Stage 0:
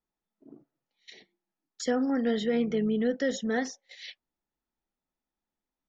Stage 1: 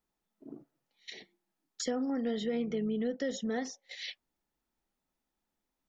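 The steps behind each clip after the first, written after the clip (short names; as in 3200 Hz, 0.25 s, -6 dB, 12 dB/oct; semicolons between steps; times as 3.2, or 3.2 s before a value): dynamic EQ 1600 Hz, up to -7 dB, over -54 dBFS, Q 4; compressor 2:1, threshold -42 dBFS, peak gain reduction 10.5 dB; gain +4 dB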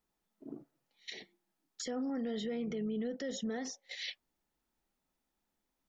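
limiter -31.5 dBFS, peak gain reduction 9 dB; gain +1 dB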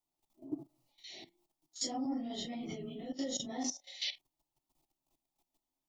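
phase scrambler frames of 0.1 s; level quantiser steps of 14 dB; fixed phaser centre 310 Hz, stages 8; gain +9.5 dB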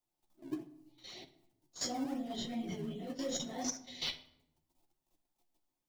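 in parallel at -11 dB: decimation with a swept rate 24×, swing 100% 2.6 Hz; on the sum: flange 0.8 Hz, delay 7.3 ms, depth 9.7 ms, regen +32%; shoebox room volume 2500 m³, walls furnished, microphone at 0.94 m; gain +2.5 dB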